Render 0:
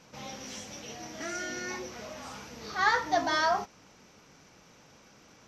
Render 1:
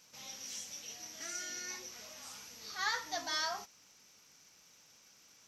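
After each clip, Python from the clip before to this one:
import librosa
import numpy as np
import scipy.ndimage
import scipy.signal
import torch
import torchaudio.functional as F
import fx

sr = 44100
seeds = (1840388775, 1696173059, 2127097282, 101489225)

y = scipy.signal.lfilter([1.0, -0.9], [1.0], x)
y = F.gain(torch.from_numpy(y), 3.0).numpy()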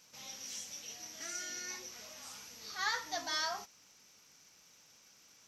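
y = x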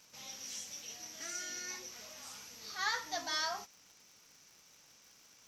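y = fx.dmg_crackle(x, sr, seeds[0], per_s=110.0, level_db=-50.0)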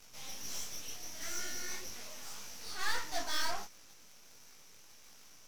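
y = fx.tube_stage(x, sr, drive_db=33.0, bias=0.75)
y = np.maximum(y, 0.0)
y = fx.detune_double(y, sr, cents=54)
y = F.gain(torch.from_numpy(y), 15.5).numpy()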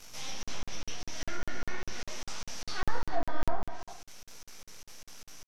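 y = fx.env_lowpass_down(x, sr, base_hz=860.0, full_db=-30.0)
y = fx.rev_gated(y, sr, seeds[1], gate_ms=430, shape='flat', drr_db=7.0)
y = fx.buffer_crackle(y, sr, first_s=0.43, period_s=0.2, block=2048, kind='zero')
y = F.gain(torch.from_numpy(y), 7.0).numpy()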